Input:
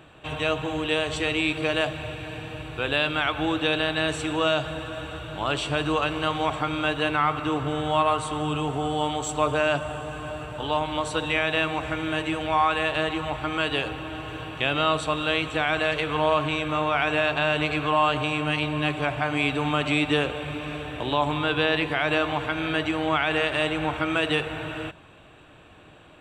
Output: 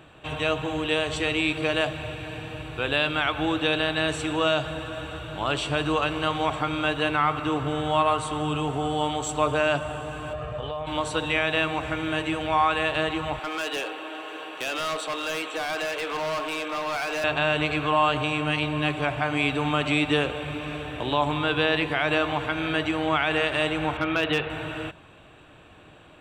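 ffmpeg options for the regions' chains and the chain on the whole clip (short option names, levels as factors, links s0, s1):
-filter_complex "[0:a]asettb=1/sr,asplit=3[s0][s1][s2];[s0]atrim=end=10.334[s3];[s1]atrim=start=10.33:end=10.87,asetpts=PTS-STARTPTS,afade=t=in:d=0.004:c=qsin,afade=t=out:st=0.536:d=0.004:c=qsin,aemphasis=mode=reproduction:type=75fm,aecho=1:1:1.7:0.63,atrim=end_sample=23814,acompressor=threshold=0.0447:ratio=12:attack=3.2:release=140:knee=1:detection=peak[s4];[s2]atrim=start=10.866[s5];[s3][s4]acrossfade=d=0.004:c1=hsin:c2=qsin[s6];[s6][s5]acrossfade=d=0.004:c1=qsin:c2=hsin,asettb=1/sr,asplit=3[s7][s8][s9];[s7]atrim=end=13.394[s10];[s8]atrim=start=13.39:end=17.24,asetpts=PTS-STARTPTS,afade=t=in:d=0.004:c=qsin,afade=t=out:st=3.846:d=0.004:c=qsin,highpass=f=330:w=0.5412,highpass=f=330:w=1.3066,volume=18.8,asoftclip=hard,volume=0.0531[s11];[s9]atrim=start=17.236[s12];[s10][s11]acrossfade=d=0.004:c1=hsin:c2=qsin[s13];[s13][s12]acrossfade=d=0.004:c1=qsin:c2=hsin,asettb=1/sr,asplit=3[s14][s15][s16];[s14]atrim=end=23.974[s17];[s15]atrim=start=23.97:end=24.5,asetpts=PTS-STARTPTS,afade=t=in:d=0.004:c=qsin,afade=t=out:st=0.526:d=0.004:c=qsin,lowpass=f=4000:w=0.5412,lowpass=f=4000:w=1.3066,asoftclip=type=hard:threshold=0.2[s18];[s16]atrim=start=24.496[s19];[s17][s18]acrossfade=d=0.004:c1=hsin:c2=qsin[s20];[s20][s19]acrossfade=d=0.004:c1=qsin:c2=hsin"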